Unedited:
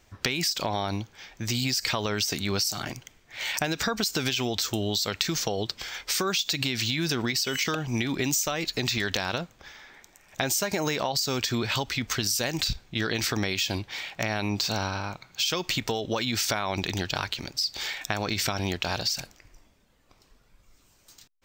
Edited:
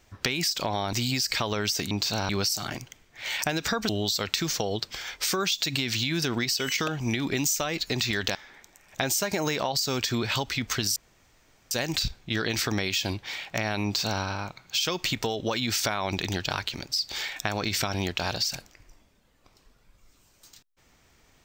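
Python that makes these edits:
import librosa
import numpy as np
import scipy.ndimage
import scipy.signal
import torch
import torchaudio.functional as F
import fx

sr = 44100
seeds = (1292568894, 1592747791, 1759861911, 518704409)

y = fx.edit(x, sr, fx.cut(start_s=0.93, length_s=0.53),
    fx.cut(start_s=4.04, length_s=0.72),
    fx.cut(start_s=9.22, length_s=0.53),
    fx.insert_room_tone(at_s=12.36, length_s=0.75),
    fx.duplicate(start_s=14.49, length_s=0.38, to_s=2.44), tone=tone)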